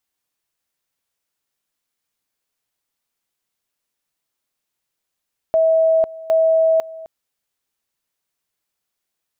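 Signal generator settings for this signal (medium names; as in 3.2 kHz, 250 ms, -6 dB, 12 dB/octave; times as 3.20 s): two-level tone 647 Hz -11.5 dBFS, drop 19.5 dB, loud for 0.50 s, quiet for 0.26 s, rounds 2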